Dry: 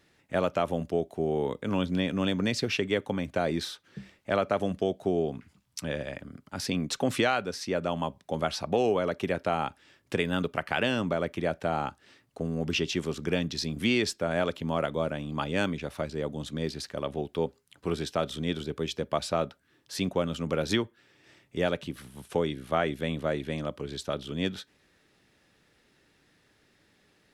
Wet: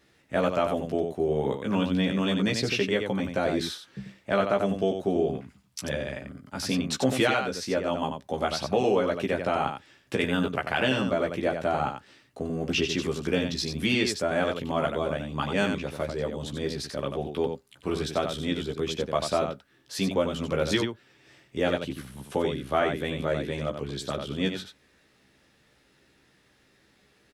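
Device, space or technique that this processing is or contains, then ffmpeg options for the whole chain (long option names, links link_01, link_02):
slapback doubling: -filter_complex "[0:a]asplit=3[link_01][link_02][link_03];[link_02]adelay=15,volume=-3dB[link_04];[link_03]adelay=92,volume=-5.5dB[link_05];[link_01][link_04][link_05]amix=inputs=3:normalize=0"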